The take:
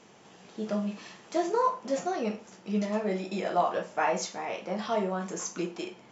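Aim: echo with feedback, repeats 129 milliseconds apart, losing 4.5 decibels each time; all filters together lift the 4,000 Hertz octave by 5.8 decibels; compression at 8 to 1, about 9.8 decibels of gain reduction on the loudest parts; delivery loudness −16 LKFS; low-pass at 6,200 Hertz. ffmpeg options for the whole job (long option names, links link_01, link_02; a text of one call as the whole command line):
ffmpeg -i in.wav -af "lowpass=6200,equalizer=frequency=4000:width_type=o:gain=8.5,acompressor=threshold=-31dB:ratio=8,aecho=1:1:129|258|387|516|645|774|903|1032|1161:0.596|0.357|0.214|0.129|0.0772|0.0463|0.0278|0.0167|0.01,volume=18.5dB" out.wav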